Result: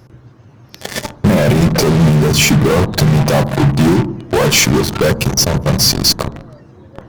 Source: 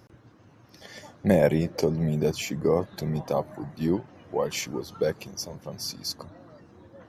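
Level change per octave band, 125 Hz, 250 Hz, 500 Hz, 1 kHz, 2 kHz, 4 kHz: +18.5, +15.0, +10.0, +15.5, +19.5, +21.0 dB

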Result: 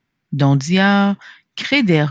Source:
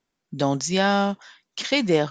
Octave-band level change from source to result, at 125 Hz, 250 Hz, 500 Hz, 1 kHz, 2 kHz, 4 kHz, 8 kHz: +13.0, +9.0, +1.5, +4.0, +9.0, +4.5, -2.5 dB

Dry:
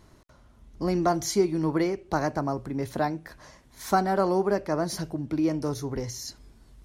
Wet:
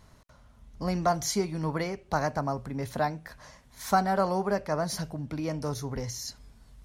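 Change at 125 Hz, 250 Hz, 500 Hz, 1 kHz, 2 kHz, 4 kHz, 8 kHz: -0.5, -5.5, -3.5, -0.5, 0.0, 0.0, 0.0 dB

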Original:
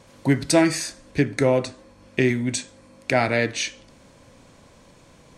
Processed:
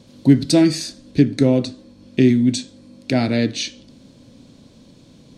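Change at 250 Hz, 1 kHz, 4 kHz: +8.0, -5.0, +4.0 dB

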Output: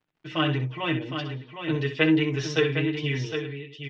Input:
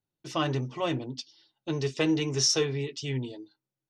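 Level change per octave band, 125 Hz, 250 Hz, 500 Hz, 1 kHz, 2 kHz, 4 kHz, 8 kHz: +4.5, +5.0, +3.0, +2.0, +9.5, 0.0, -14.5 dB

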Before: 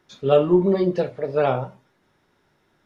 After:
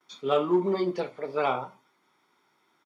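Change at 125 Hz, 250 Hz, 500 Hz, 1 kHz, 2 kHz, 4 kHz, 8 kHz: -13.0 dB, -7.5 dB, -7.5 dB, -2.0 dB, -2.5 dB, -1.5 dB, n/a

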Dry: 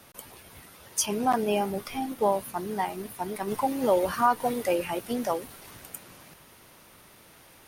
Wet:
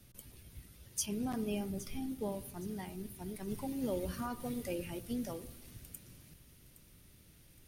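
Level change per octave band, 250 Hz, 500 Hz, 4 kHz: -6.0, -14.0, -10.5 dB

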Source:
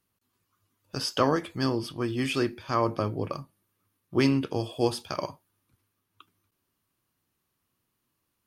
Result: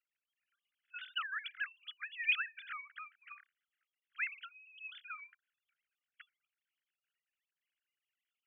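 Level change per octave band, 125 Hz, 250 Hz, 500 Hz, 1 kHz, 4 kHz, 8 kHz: under -40 dB, under -40 dB, under -40 dB, -17.0 dB, -9.5 dB, under -35 dB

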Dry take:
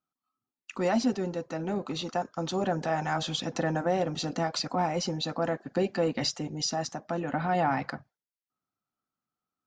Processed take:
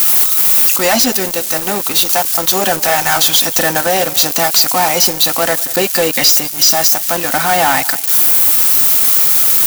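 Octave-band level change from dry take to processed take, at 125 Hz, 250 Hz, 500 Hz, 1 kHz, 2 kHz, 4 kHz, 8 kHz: +5.0, +7.5, +12.5, +14.5, +20.0, +21.5, +28.0 dB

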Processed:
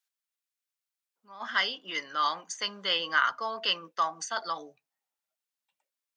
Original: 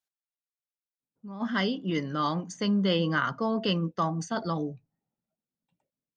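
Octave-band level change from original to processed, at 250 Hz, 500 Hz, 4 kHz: -21.0, -8.5, +5.0 dB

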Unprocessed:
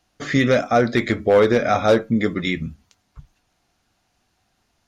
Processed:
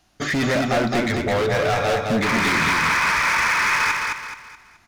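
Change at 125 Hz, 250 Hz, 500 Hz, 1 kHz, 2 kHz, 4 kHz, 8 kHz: -0.5 dB, -2.5 dB, -4.5 dB, +4.0 dB, +8.0 dB, +5.5 dB, n/a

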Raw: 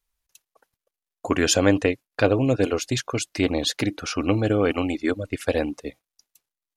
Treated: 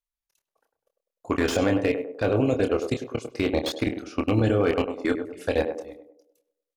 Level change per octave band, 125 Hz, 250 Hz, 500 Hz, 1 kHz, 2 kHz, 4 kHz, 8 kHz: -2.0, -2.0, -1.0, -2.0, -3.5, -7.0, -13.0 dB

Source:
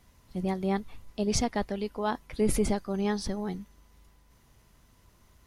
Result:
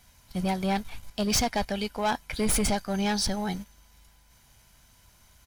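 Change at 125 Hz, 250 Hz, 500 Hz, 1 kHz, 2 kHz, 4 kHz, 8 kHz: +1.5, +1.0, -1.0, +4.5, +6.5, +9.0, +7.0 dB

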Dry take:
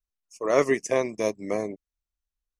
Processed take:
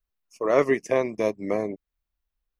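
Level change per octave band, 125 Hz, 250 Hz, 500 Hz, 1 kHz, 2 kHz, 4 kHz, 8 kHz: +1.5, +1.5, +1.5, +1.0, 0.0, -3.0, -8.5 dB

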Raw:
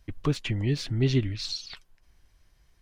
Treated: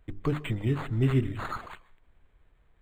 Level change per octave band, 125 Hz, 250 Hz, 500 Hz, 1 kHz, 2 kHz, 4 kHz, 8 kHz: -1.0 dB, -1.0 dB, -1.0 dB, n/a, -0.5 dB, -12.5 dB, under -10 dB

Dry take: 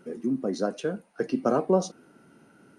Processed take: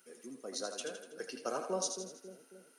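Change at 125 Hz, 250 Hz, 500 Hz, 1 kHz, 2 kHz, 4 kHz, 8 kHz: -20.0, -19.0, -13.0, -10.5, -6.5, +1.5, +4.5 dB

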